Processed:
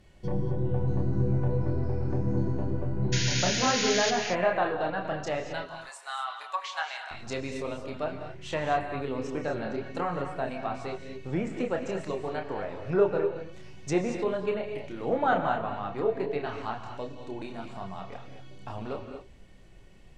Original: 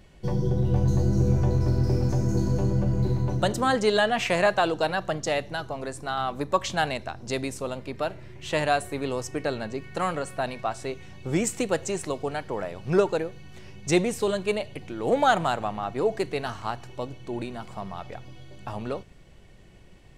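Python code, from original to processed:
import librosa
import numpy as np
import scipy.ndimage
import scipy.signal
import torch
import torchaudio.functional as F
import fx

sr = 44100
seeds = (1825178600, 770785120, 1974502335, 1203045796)

y = fx.highpass(x, sr, hz=880.0, slope=24, at=(5.62, 7.11))
y = fx.chorus_voices(y, sr, voices=4, hz=0.38, base_ms=29, depth_ms=2.8, mix_pct=40)
y = fx.env_lowpass_down(y, sr, base_hz=2000.0, full_db=-25.5)
y = fx.spec_paint(y, sr, seeds[0], shape='noise', start_s=3.12, length_s=0.99, low_hz=1400.0, high_hz=7000.0, level_db=-30.0)
y = fx.rev_gated(y, sr, seeds[1], gate_ms=260, shape='rising', drr_db=6.0)
y = F.gain(torch.from_numpy(y), -1.0).numpy()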